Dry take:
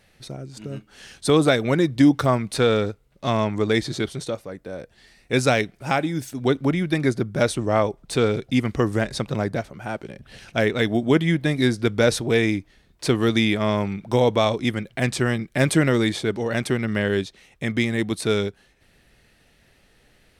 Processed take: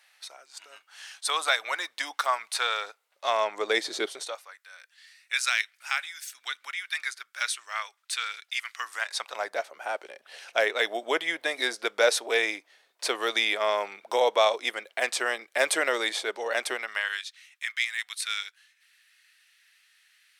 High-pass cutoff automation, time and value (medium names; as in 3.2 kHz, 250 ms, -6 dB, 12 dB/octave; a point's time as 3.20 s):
high-pass 24 dB/octave
2.73 s 870 Hz
4.06 s 400 Hz
4.61 s 1.4 kHz
8.71 s 1.4 kHz
9.62 s 540 Hz
16.73 s 540 Hz
17.24 s 1.5 kHz